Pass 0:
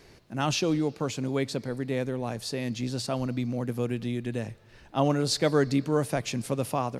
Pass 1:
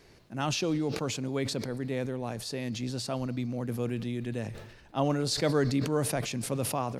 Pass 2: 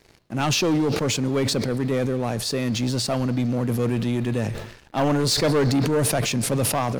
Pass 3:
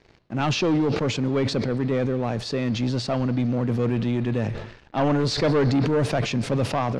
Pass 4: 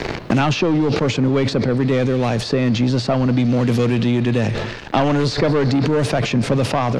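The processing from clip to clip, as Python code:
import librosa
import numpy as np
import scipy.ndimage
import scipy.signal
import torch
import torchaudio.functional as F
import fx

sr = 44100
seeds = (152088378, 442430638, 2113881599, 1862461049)

y1 = fx.sustainer(x, sr, db_per_s=56.0)
y1 = y1 * librosa.db_to_amplitude(-3.5)
y2 = fx.leveller(y1, sr, passes=3)
y3 = fx.air_absorb(y2, sr, metres=140.0)
y4 = fx.band_squash(y3, sr, depth_pct=100)
y4 = y4 * librosa.db_to_amplitude(5.0)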